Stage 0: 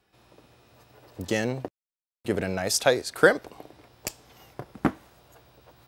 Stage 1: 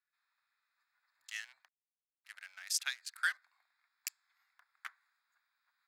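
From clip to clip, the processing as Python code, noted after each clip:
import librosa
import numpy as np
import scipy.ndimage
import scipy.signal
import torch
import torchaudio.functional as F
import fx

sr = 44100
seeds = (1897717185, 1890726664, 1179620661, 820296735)

y = fx.wiener(x, sr, points=15)
y = scipy.signal.sosfilt(scipy.signal.cheby2(4, 60, 470.0, 'highpass', fs=sr, output='sos'), y)
y = fx.rider(y, sr, range_db=10, speed_s=0.5)
y = F.gain(torch.from_numpy(y), -4.5).numpy()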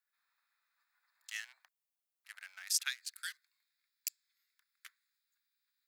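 y = fx.high_shelf(x, sr, hz=11000.0, db=8.5)
y = fx.filter_sweep_highpass(y, sr, from_hz=480.0, to_hz=3200.0, start_s=2.53, end_s=3.24, q=0.77)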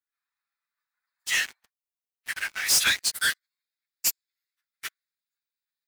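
y = fx.phase_scramble(x, sr, seeds[0], window_ms=50)
y = fx.leveller(y, sr, passes=5)
y = F.gain(torch.from_numpy(y), 2.5).numpy()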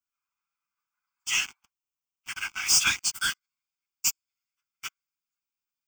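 y = fx.fixed_phaser(x, sr, hz=2700.0, stages=8)
y = F.gain(torch.from_numpy(y), 2.5).numpy()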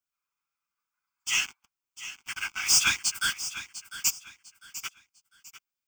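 y = fx.echo_feedback(x, sr, ms=700, feedback_pct=29, wet_db=-13.5)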